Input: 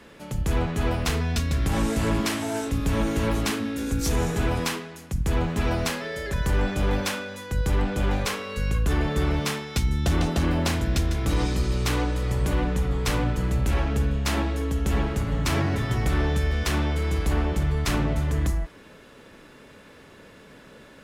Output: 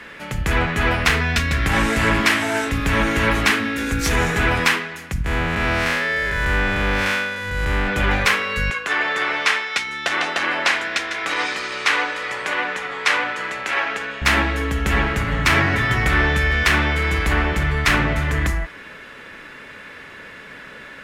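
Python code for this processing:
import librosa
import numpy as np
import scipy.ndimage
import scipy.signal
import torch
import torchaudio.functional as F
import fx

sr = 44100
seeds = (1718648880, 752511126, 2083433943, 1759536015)

y = fx.spec_blur(x, sr, span_ms=170.0, at=(5.24, 7.87), fade=0.02)
y = fx.bandpass_edges(y, sr, low_hz=530.0, high_hz=8000.0, at=(8.7, 14.22))
y = fx.peak_eq(y, sr, hz=1900.0, db=14.5, octaves=1.7)
y = y * 10.0 ** (2.5 / 20.0)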